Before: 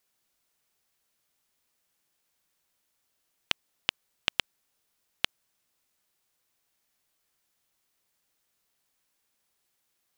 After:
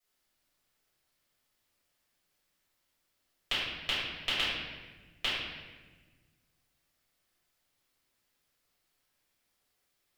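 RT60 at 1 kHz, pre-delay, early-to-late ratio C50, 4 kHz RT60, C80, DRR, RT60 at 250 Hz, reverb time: 1.2 s, 3 ms, −2.0 dB, 0.95 s, 1.0 dB, −12.0 dB, 2.0 s, 1.3 s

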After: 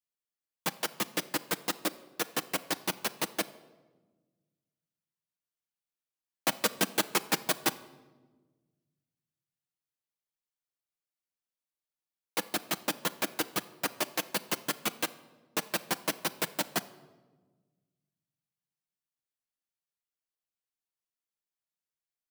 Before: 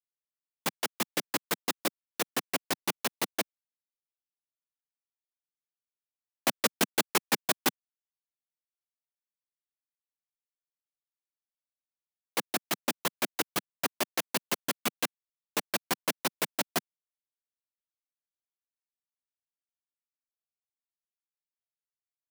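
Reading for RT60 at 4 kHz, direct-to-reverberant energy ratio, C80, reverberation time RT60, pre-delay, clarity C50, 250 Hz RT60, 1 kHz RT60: 0.85 s, 8.5 dB, 19.0 dB, 1.3 s, 6 ms, 17.5 dB, 2.0 s, 1.1 s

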